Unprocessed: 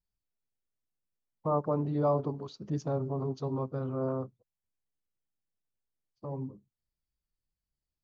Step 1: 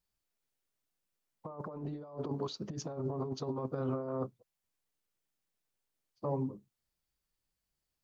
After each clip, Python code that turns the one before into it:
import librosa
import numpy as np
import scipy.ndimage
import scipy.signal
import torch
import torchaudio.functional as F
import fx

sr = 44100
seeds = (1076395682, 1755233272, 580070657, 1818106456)

y = fx.over_compress(x, sr, threshold_db=-35.0, ratio=-0.5)
y = fx.low_shelf(y, sr, hz=180.0, db=-8.5)
y = F.gain(torch.from_numpy(y), 2.0).numpy()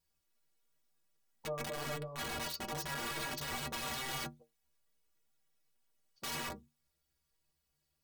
y = (np.mod(10.0 ** (38.5 / 20.0) * x + 1.0, 2.0) - 1.0) / 10.0 ** (38.5 / 20.0)
y = fx.stiff_resonator(y, sr, f0_hz=70.0, decay_s=0.31, stiffness=0.03)
y = F.gain(torch.from_numpy(y), 12.0).numpy()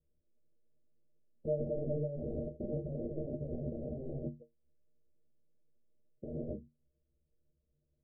y = scipy.signal.sosfilt(scipy.signal.butter(16, 630.0, 'lowpass', fs=sr, output='sos'), x)
y = F.gain(torch.from_numpy(y), 7.5).numpy()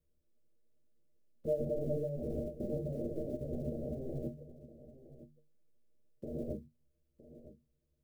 y = fx.block_float(x, sr, bits=7)
y = fx.hum_notches(y, sr, base_hz=50, count=3)
y = y + 10.0 ** (-15.5 / 20.0) * np.pad(y, (int(963 * sr / 1000.0), 0))[:len(y)]
y = F.gain(torch.from_numpy(y), 1.0).numpy()